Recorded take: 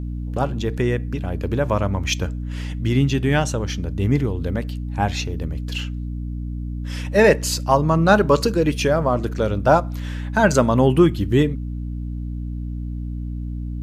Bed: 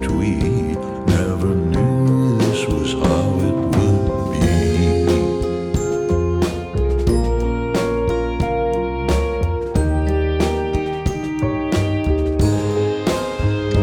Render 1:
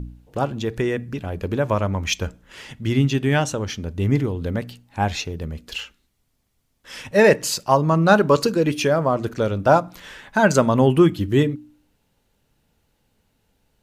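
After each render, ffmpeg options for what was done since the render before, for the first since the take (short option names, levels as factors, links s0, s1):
-af "bandreject=f=60:t=h:w=4,bandreject=f=120:t=h:w=4,bandreject=f=180:t=h:w=4,bandreject=f=240:t=h:w=4,bandreject=f=300:t=h:w=4"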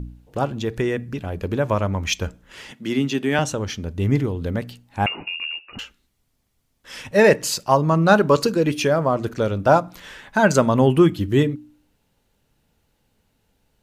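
-filter_complex "[0:a]asettb=1/sr,asplit=3[s0][s1][s2];[s0]atrim=end=2.714[s3];[s1]atrim=start=2.71:end=3.39,asetpts=PTS-STARTPTS,afade=t=in:d=0.004:c=qsin,afade=t=out:st=0.676:d=0.004:c=qsin,highpass=f=180:w=0.5412,highpass=f=180:w=1.3066[s4];[s2]atrim=start=3.386[s5];[s3][s4]acrossfade=d=0.004:c1=hsin:c2=qsin[s6];[s6][s5]acrossfade=d=0.004:c1=qsin:c2=hsin,asettb=1/sr,asplit=3[s7][s8][s9];[s7]atrim=end=5.064[s10];[s8]atrim=start=5.06:end=5.79,asetpts=PTS-STARTPTS,afade=t=in:d=0.004:c=qsin,afade=t=out:st=0.726:d=0.004:c=qsin,lowpass=f=2500:t=q:w=0.5098,lowpass=f=2500:t=q:w=0.6013,lowpass=f=2500:t=q:w=0.9,lowpass=f=2500:t=q:w=2.563,afreqshift=-2900[s11];[s9]atrim=start=5.786[s12];[s10][s11]acrossfade=d=0.004:c1=hsin:c2=qsin[s13];[s13][s12]acrossfade=d=0.004:c1=qsin:c2=hsin"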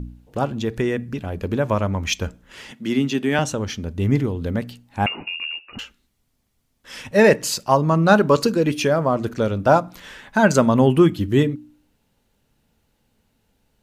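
-af "equalizer=f=230:t=o:w=0.3:g=4"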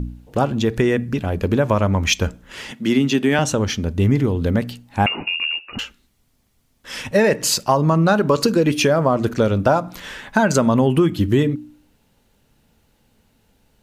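-filter_complex "[0:a]asplit=2[s0][s1];[s1]alimiter=limit=0.335:level=0:latency=1,volume=1[s2];[s0][s2]amix=inputs=2:normalize=0,acompressor=threshold=0.251:ratio=5"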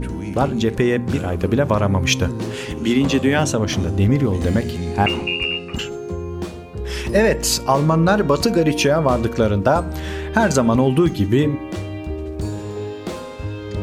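-filter_complex "[1:a]volume=0.335[s0];[0:a][s0]amix=inputs=2:normalize=0"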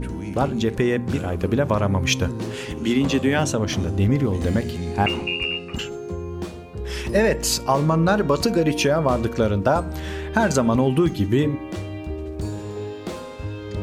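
-af "volume=0.708"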